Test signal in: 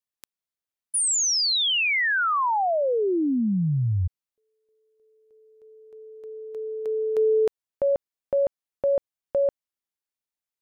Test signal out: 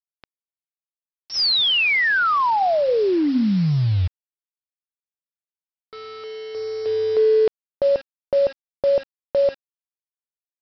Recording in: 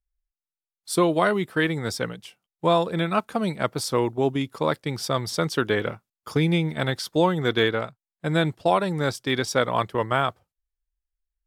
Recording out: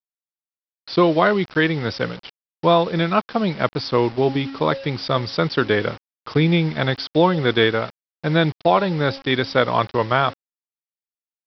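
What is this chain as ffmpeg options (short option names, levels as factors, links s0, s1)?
-af "bandreject=f=271.9:t=h:w=4,bandreject=f=543.8:t=h:w=4,bandreject=f=815.7:t=h:w=4,aresample=11025,acrusher=bits=6:mix=0:aa=0.000001,aresample=44100,volume=1.68"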